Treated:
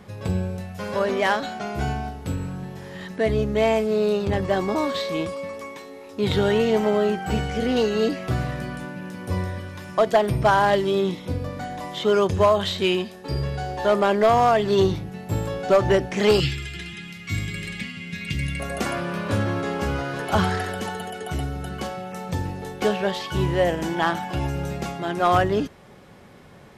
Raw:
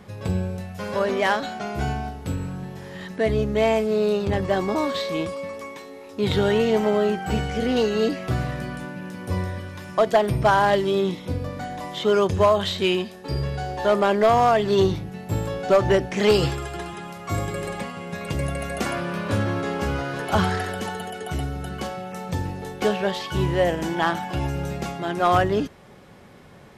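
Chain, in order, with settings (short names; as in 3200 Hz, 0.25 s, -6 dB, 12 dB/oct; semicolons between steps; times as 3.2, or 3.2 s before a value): 16.4–18.6 EQ curve 240 Hz 0 dB, 590 Hz -21 dB, 1000 Hz -20 dB, 2100 Hz +7 dB, 3800 Hz +5 dB, 9100 Hz -4 dB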